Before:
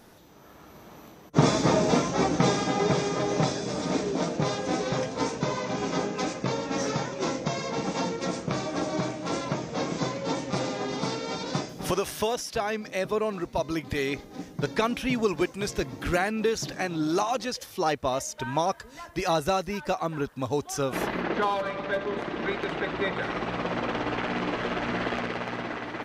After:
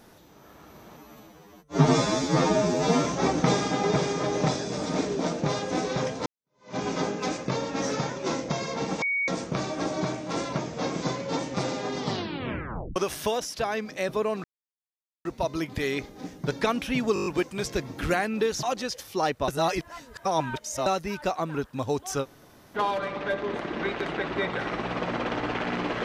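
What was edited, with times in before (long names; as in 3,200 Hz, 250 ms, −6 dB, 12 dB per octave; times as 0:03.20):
0:00.97–0:02.01: time-stretch 2×
0:05.22–0:05.72: fade in exponential
0:07.98–0:08.24: beep over 2,240 Hz −23.5 dBFS
0:10.95: tape stop 0.97 s
0:13.40: splice in silence 0.81 s
0:15.29: stutter 0.02 s, 7 plays
0:16.66–0:17.26: remove
0:18.11–0:19.49: reverse
0:20.86–0:21.40: fill with room tone, crossfade 0.06 s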